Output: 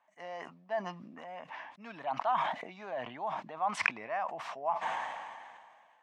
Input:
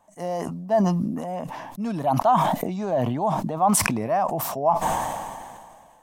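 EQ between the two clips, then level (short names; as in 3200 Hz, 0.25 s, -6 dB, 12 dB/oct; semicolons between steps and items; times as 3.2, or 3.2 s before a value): band-pass 2100 Hz, Q 1.6; air absorption 100 m; 0.0 dB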